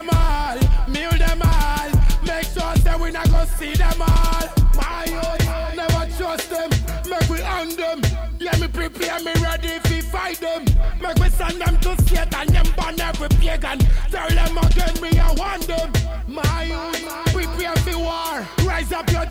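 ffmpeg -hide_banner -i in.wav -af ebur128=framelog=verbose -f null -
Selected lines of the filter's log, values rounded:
Integrated loudness:
  I:         -20.9 LUFS
  Threshold: -30.9 LUFS
Loudness range:
  LRA:         2.5 LU
  Threshold: -40.9 LUFS
  LRA low:   -22.3 LUFS
  LRA high:  -19.8 LUFS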